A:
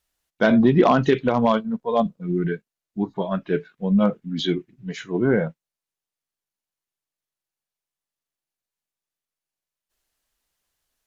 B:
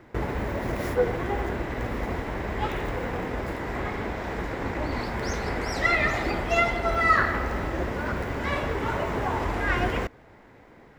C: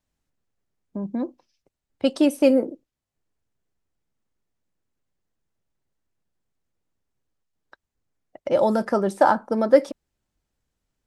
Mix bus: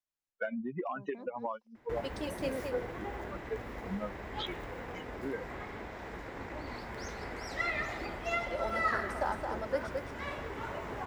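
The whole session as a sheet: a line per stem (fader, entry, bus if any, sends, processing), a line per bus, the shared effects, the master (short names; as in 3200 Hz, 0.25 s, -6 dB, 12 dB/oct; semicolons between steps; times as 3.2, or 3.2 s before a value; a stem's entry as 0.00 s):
-0.5 dB, 0.00 s, no send, no echo send, per-bin expansion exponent 3; three-band isolator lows -13 dB, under 210 Hz, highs -21 dB, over 3000 Hz; compressor 12:1, threshold -31 dBFS, peak gain reduction 16.5 dB
-10.5 dB, 1.75 s, no send, no echo send, dry
-13.5 dB, 0.00 s, no send, echo send -5 dB, low shelf 360 Hz -11.5 dB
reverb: off
echo: echo 0.219 s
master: low shelf 370 Hz -4 dB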